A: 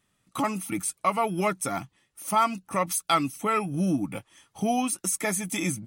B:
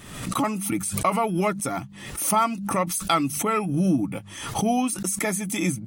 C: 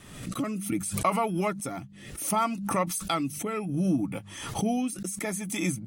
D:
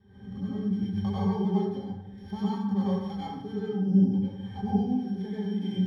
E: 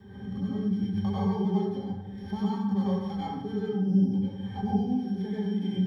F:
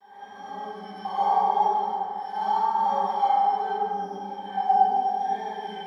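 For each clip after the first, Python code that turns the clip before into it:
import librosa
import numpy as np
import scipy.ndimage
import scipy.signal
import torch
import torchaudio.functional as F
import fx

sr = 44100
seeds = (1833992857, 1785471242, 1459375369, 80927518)

y1 = fx.low_shelf(x, sr, hz=470.0, db=5.0)
y1 = fx.hum_notches(y1, sr, base_hz=50, count=4)
y1 = fx.pre_swell(y1, sr, db_per_s=61.0)
y2 = fx.rotary(y1, sr, hz=0.65)
y2 = F.gain(torch.from_numpy(y2), -2.5).numpy()
y3 = np.r_[np.sort(y2[:len(y2) // 8 * 8].reshape(-1, 8), axis=1).ravel(), y2[len(y2) // 8 * 8:]]
y3 = fx.octave_resonator(y3, sr, note='G', decay_s=0.12)
y3 = fx.rev_plate(y3, sr, seeds[0], rt60_s=0.95, hf_ratio=0.6, predelay_ms=80, drr_db=-8.5)
y4 = fx.band_squash(y3, sr, depth_pct=40)
y5 = fx.vibrato(y4, sr, rate_hz=0.8, depth_cents=37.0)
y5 = fx.highpass_res(y5, sr, hz=800.0, q=4.9)
y5 = fx.rev_plate(y5, sr, seeds[1], rt60_s=2.3, hf_ratio=0.5, predelay_ms=0, drr_db=-8.0)
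y5 = F.gain(torch.from_numpy(y5), -3.5).numpy()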